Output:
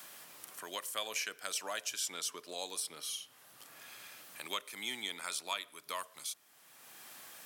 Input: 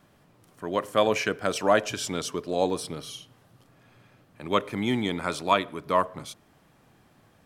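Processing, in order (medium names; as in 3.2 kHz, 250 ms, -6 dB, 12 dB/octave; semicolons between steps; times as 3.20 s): differentiator; three bands compressed up and down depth 70%; trim +1.5 dB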